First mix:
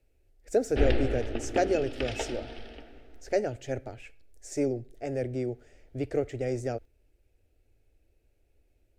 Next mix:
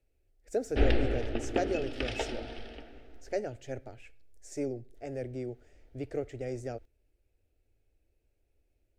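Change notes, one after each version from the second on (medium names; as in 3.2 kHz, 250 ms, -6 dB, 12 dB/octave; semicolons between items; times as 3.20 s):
speech -6.0 dB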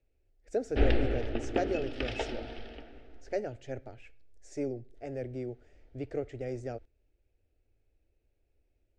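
master: add distance through air 74 m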